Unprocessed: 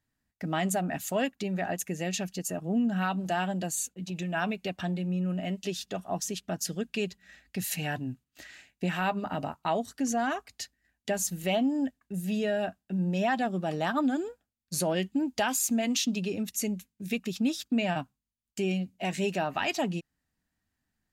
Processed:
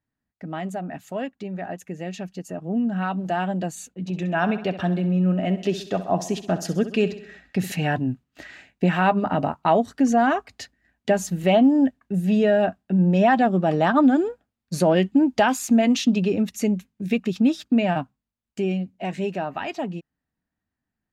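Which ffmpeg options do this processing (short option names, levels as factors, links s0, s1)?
-filter_complex "[0:a]asettb=1/sr,asplit=3[s0][s1][s2];[s0]atrim=end=3.994[s3];[s1]atrim=start=3.99:end=7.72,asetpts=PTS-STARTPTS,afade=t=in:d=0.004:c=qsin,afade=t=out:st=3.726:d=0.004:c=qsin,aecho=1:1:65|130|195|260|325:0.224|0.119|0.0629|0.0333|0.0177,atrim=end_sample=164493[s4];[s2]atrim=start=7.716[s5];[s3][s4]acrossfade=d=0.004:c1=hsin:c2=qsin[s6];[s6][s5]acrossfade=d=0.004:c1=qsin:c2=hsin,lowpass=f=1400:p=1,lowshelf=f=70:g=-7.5,dynaudnorm=f=440:g=17:m=3.76"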